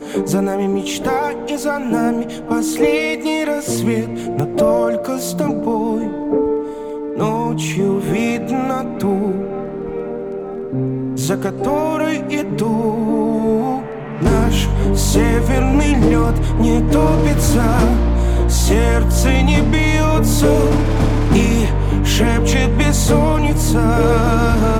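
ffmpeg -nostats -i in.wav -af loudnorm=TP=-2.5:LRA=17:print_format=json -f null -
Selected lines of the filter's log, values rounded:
"input_i" : "-16.5",
"input_tp" : "-3.6",
"input_lra" : "5.1",
"input_thresh" : "-26.5",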